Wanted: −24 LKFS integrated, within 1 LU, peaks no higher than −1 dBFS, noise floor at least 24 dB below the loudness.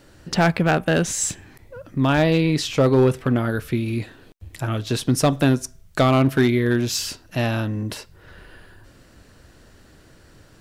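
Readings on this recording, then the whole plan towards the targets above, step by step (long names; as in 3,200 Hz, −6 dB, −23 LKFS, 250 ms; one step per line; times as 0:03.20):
share of clipped samples 1.0%; peaks flattened at −10.0 dBFS; integrated loudness −21.0 LKFS; sample peak −10.0 dBFS; target loudness −24.0 LKFS
→ clipped peaks rebuilt −10 dBFS
level −3 dB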